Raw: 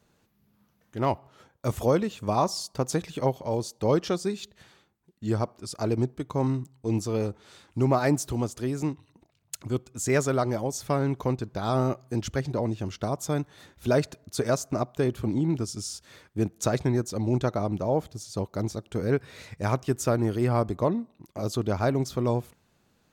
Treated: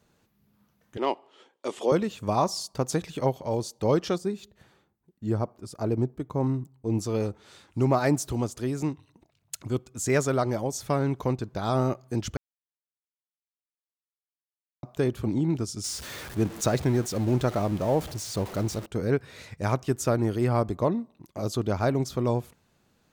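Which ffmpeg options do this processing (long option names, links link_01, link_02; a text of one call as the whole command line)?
ffmpeg -i in.wav -filter_complex "[0:a]asettb=1/sr,asplit=3[link_01][link_02][link_03];[link_01]atrim=end=0.974[link_04];[link_02]atrim=start=0.97:end=1.92,asetpts=PTS-STARTPTS,afade=type=in:duration=0.004:curve=qsin,afade=type=out:start_time=0.946:duration=0.004:curve=qsin,highpass=frequency=280:width=0.5412,highpass=frequency=280:width=1.3066,equalizer=frequency=400:width_type=q:width=4:gain=4,equalizer=frequency=640:width_type=q:width=4:gain=-4,equalizer=frequency=1400:width_type=q:width=4:gain=-5,equalizer=frequency=3100:width_type=q:width=4:gain=8,equalizer=frequency=6100:width_type=q:width=4:gain=-4,lowpass=frequency=8400:width=0.5412,lowpass=frequency=8400:width=1.3066[link_05];[link_03]atrim=start=1.916[link_06];[link_04][link_05]acrossfade=duration=0.004:curve1=hsin:curve2=qsin[link_07];[link_07][link_06]acrossfade=duration=0.004:curve1=qsin:curve2=hsin,asettb=1/sr,asplit=3[link_08][link_09][link_10];[link_08]atrim=end=4.184[link_11];[link_09]atrim=start=4.18:end=6.99,asetpts=PTS-STARTPTS,afade=type=in:duration=0.004:curve=qsin,afade=type=out:start_time=2.806:duration=0.004:curve=qsin,equalizer=frequency=4700:width=0.34:gain=-9[link_12];[link_10]atrim=start=6.986[link_13];[link_11][link_12]acrossfade=duration=0.004:curve1=hsin:curve2=qsin[link_14];[link_14][link_13]acrossfade=duration=0.004:curve1=qsin:curve2=hsin,asettb=1/sr,asplit=3[link_15][link_16][link_17];[link_15]atrim=end=15.844[link_18];[link_16]atrim=start=15.84:end=18.86,asetpts=PTS-STARTPTS,afade=type=in:duration=0.004:curve=qsin,afade=type=out:start_time=3.016:duration=0.004:curve=qsin,aeval=exprs='val(0)+0.5*0.0178*sgn(val(0))':channel_layout=same[link_19];[link_17]atrim=start=18.856[link_20];[link_18][link_19]acrossfade=duration=0.004:curve1=hsin:curve2=qsin[link_21];[link_21][link_20]acrossfade=duration=0.004:curve1=qsin:curve2=hsin,asplit=3[link_22][link_23][link_24];[link_22]atrim=end=12.37,asetpts=PTS-STARTPTS,afade=type=out:start_time=12.366:duration=0.004:curve=hsin[link_25];[link_23]atrim=start=12.37:end=14.83,asetpts=PTS-STARTPTS,volume=0[link_26];[link_24]atrim=start=14.83,asetpts=PTS-STARTPTS,afade=type=in:duration=0.004:curve=hsin[link_27];[link_25][link_26][link_27]concat=n=3:v=0:a=1" out.wav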